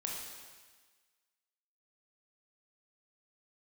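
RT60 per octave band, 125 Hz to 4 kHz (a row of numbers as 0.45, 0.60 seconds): 1.3, 1.4, 1.4, 1.5, 1.5, 1.5 seconds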